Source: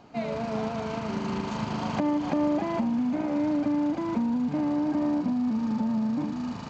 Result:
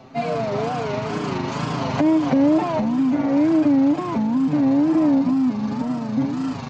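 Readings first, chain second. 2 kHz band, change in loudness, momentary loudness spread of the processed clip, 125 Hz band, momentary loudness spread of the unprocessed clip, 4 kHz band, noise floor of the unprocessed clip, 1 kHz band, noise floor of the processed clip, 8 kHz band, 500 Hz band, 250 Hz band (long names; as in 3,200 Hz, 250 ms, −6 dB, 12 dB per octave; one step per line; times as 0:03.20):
+7.0 dB, +7.5 dB, 8 LU, +8.0 dB, 5 LU, +7.0 dB, −36 dBFS, +7.0 dB, −29 dBFS, can't be measured, +8.0 dB, +7.5 dB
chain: comb filter 7.2 ms, depth 80%
tape wow and flutter 140 cents
level +5 dB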